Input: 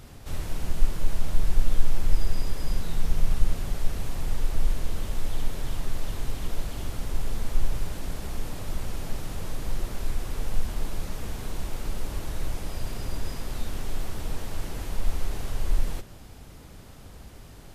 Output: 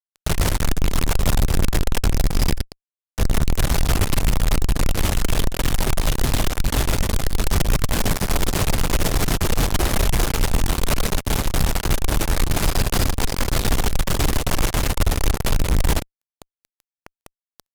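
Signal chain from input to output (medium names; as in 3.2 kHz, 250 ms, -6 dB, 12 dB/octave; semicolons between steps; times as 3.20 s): Chebyshev shaper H 4 -37 dB, 6 -10 dB, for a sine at -4.5 dBFS; 2.57–3.18 s: inverted gate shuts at -16 dBFS, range -39 dB; fuzz box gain 38 dB, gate -35 dBFS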